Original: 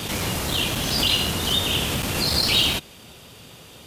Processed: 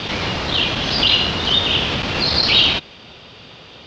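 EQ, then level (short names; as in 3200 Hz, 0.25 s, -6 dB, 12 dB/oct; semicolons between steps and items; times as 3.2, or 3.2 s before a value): inverse Chebyshev low-pass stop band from 8700 Hz, stop band 40 dB; low shelf 360 Hz -5.5 dB; +6.5 dB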